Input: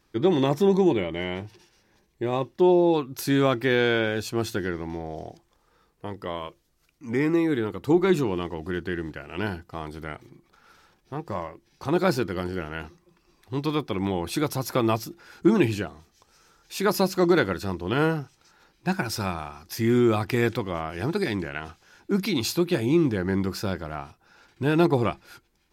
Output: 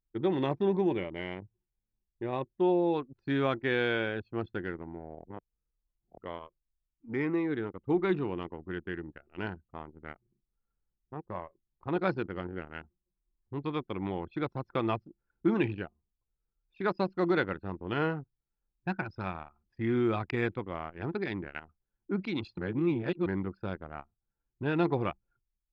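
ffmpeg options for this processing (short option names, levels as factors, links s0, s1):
-filter_complex "[0:a]asplit=5[s0][s1][s2][s3][s4];[s0]atrim=end=5.252[s5];[s1]atrim=start=5.248:end=6.182,asetpts=PTS-STARTPTS,areverse[s6];[s2]atrim=start=6.178:end=22.582[s7];[s3]atrim=start=22.578:end=23.262,asetpts=PTS-STARTPTS,areverse[s8];[s4]atrim=start=23.258[s9];[s5][s6]acrossfade=d=0.004:c1=hsin:c2=hsin[s10];[s10][s7]acrossfade=d=0.004:c1=hsin:c2=hsin[s11];[s11][s8]acrossfade=d=0.004:c1=hsin:c2=hsin[s12];[s12][s9]acrossfade=d=0.004:c1=hsin:c2=hsin,lowpass=2900,anlmdn=39.8,tiltshelf=f=1500:g=-3,volume=0.562"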